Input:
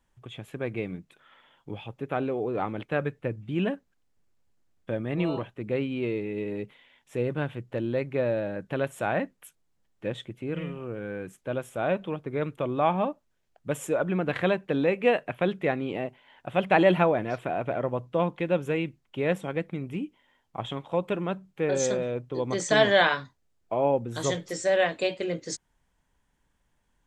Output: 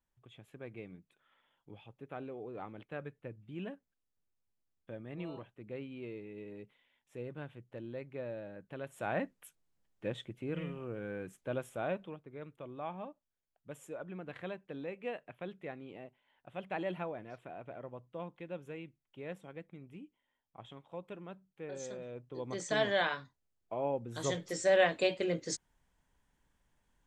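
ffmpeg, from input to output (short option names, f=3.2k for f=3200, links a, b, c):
-af "volume=8.5dB,afade=t=in:st=8.83:d=0.41:silence=0.354813,afade=t=out:st=11.63:d=0.61:silence=0.266073,afade=t=in:st=21.9:d=0.68:silence=0.446684,afade=t=in:st=23.99:d=0.76:silence=0.421697"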